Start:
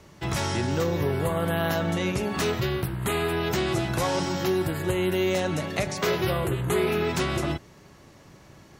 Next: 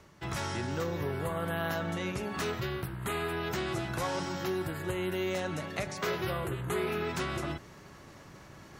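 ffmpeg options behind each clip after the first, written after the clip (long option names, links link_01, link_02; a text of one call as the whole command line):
ffmpeg -i in.wav -af "equalizer=frequency=1400:width=1.3:gain=4.5,areverse,acompressor=mode=upward:threshold=-33dB:ratio=2.5,areverse,volume=-8.5dB" out.wav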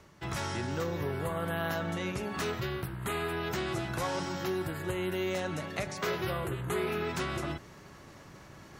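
ffmpeg -i in.wav -af anull out.wav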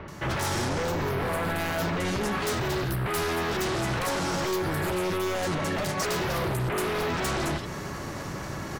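ffmpeg -i in.wav -filter_complex "[0:a]acompressor=threshold=-35dB:ratio=6,aeval=exprs='0.0596*sin(PI/2*4.47*val(0)/0.0596)':channel_layout=same,acrossover=split=3000[link_01][link_02];[link_02]adelay=80[link_03];[link_01][link_03]amix=inputs=2:normalize=0" out.wav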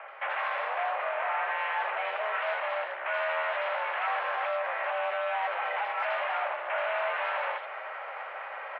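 ffmpeg -i in.wav -af "highpass=frequency=380:width_type=q:width=0.5412,highpass=frequency=380:width_type=q:width=1.307,lowpass=frequency=2600:width_type=q:width=0.5176,lowpass=frequency=2600:width_type=q:width=0.7071,lowpass=frequency=2600:width_type=q:width=1.932,afreqshift=220" out.wav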